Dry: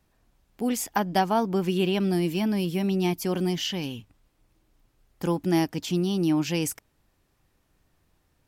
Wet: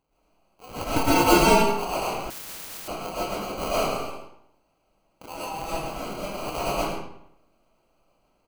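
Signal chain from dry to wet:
0:00.84–0:01.47: voice inversion scrambler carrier 2,900 Hz
Bessel high-pass filter 1,100 Hz, order 4
sample-rate reduction 1,800 Hz, jitter 0%
0:05.40–0:05.94: transient designer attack −7 dB, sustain +3 dB
slap from a distant wall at 18 metres, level −7 dB
convolution reverb RT60 0.75 s, pre-delay 80 ms, DRR −9 dB
0:02.30–0:02.88: every bin compressed towards the loudest bin 10 to 1
level −1.5 dB

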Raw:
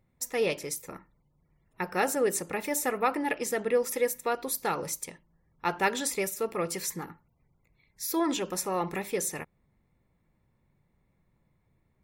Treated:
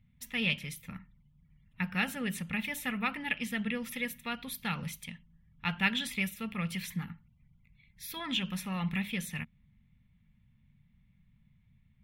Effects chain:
drawn EQ curve 230 Hz 0 dB, 330 Hz −27 dB, 1,100 Hz −15 dB, 3,200 Hz +3 dB, 4,700 Hz −15 dB, 7,300 Hz −22 dB, 11,000 Hz −15 dB
level +6 dB

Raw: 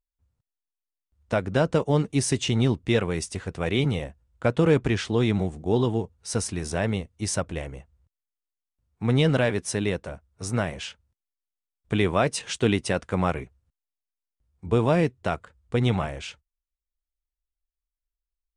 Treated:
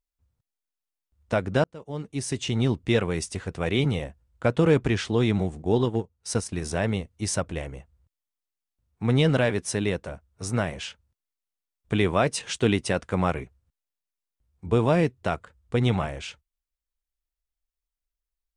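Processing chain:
0:01.64–0:02.84: fade in linear
0:05.59–0:06.62: transient designer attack +1 dB, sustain −11 dB

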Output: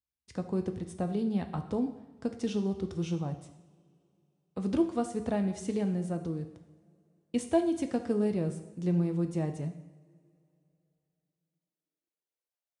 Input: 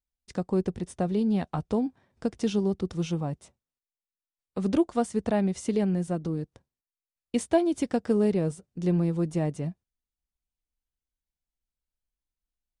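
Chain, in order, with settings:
coupled-rooms reverb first 0.81 s, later 3.1 s, from −21 dB, DRR 6.5 dB
high-pass filter sweep 85 Hz → 560 Hz, 0:11.02–0:12.52
level −6 dB

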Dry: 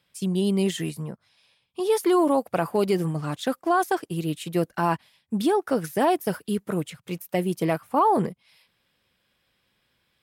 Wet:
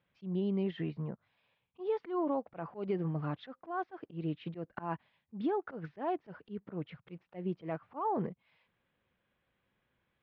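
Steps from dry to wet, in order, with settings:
downward compressor 2.5 to 1, threshold −26 dBFS, peak gain reduction 7 dB
Gaussian smoothing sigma 3.3 samples
volume swells 130 ms
level −5 dB

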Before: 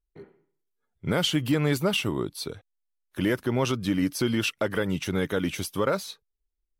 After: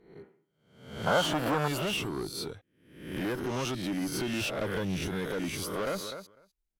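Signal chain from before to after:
peak hold with a rise ahead of every peak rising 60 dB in 0.65 s
0:04.41–0:05.08: low-shelf EQ 170 Hz +9 dB
0:05.61–0:06.01: delay throw 250 ms, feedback 10%, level −13 dB
tube saturation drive 23 dB, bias 0.3
0:01.06–0:01.68: flat-topped bell 900 Hz +14 dB
level −4 dB

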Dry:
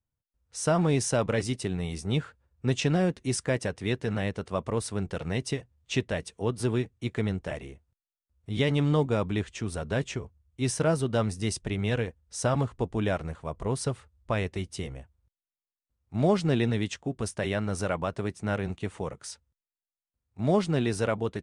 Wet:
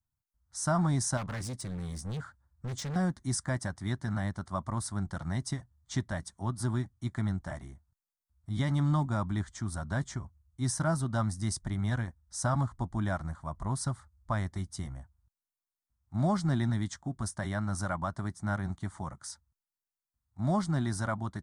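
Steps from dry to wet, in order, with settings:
phaser with its sweep stopped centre 1,100 Hz, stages 4
0:01.17–0:02.96: hard clipping −33.5 dBFS, distortion −14 dB

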